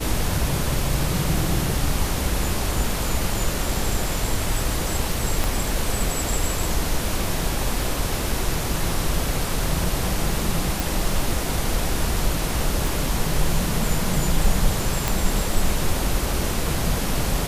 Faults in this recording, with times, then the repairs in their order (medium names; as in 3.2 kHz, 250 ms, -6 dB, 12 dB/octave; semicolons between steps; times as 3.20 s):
5.44 s: pop
10.80 s: pop
12.87 s: pop
15.08 s: pop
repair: de-click